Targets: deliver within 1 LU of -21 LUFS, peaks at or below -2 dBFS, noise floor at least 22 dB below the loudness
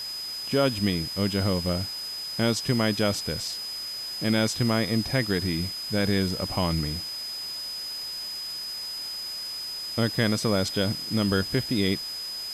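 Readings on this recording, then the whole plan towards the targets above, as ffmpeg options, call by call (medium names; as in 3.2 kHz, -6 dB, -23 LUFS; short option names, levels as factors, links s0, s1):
steady tone 5 kHz; tone level -32 dBFS; noise floor -35 dBFS; noise floor target -49 dBFS; loudness -27.0 LUFS; peak level -10.5 dBFS; loudness target -21.0 LUFS
-> -af "bandreject=f=5000:w=30"
-af "afftdn=nr=14:nf=-35"
-af "volume=2"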